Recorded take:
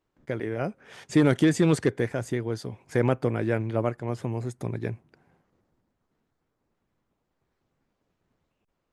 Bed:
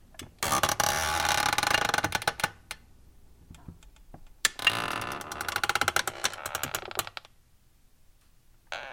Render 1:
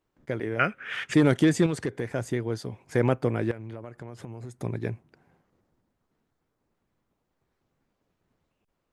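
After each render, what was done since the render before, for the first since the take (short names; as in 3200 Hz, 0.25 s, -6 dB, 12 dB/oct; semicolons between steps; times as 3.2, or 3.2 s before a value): 0.59–1.14 band shelf 2000 Hz +16 dB; 1.66–2.12 compressor 2.5:1, threshold -27 dBFS; 3.51–4.6 compressor 16:1, threshold -34 dBFS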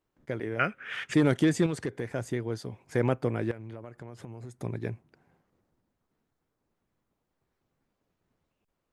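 gain -3 dB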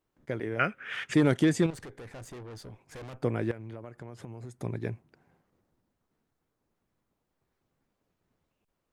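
1.7–3.23 tube stage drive 41 dB, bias 0.55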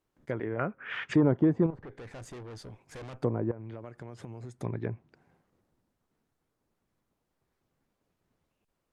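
dynamic EQ 1000 Hz, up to +7 dB, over -50 dBFS, Q 2.9; treble ducked by the level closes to 800 Hz, closed at -26.5 dBFS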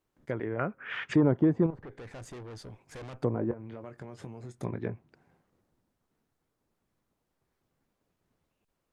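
3.33–4.94 doubler 22 ms -9 dB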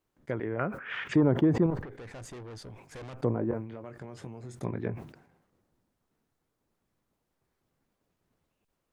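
sustainer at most 86 dB/s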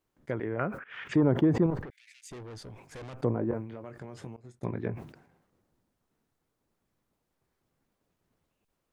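0.84–1.33 fade in equal-power, from -20 dB; 1.9–2.31 Chebyshev high-pass 2200 Hz, order 4; 4.36–4.96 expander -37 dBFS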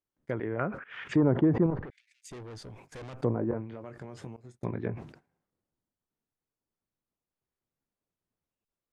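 treble ducked by the level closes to 2200 Hz, closed at -25 dBFS; gate -53 dBFS, range -14 dB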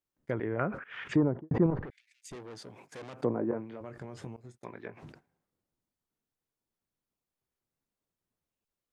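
1.09–1.51 studio fade out; 2.35–3.81 HPF 180 Hz; 4.58–5.03 HPF 1100 Hz 6 dB/oct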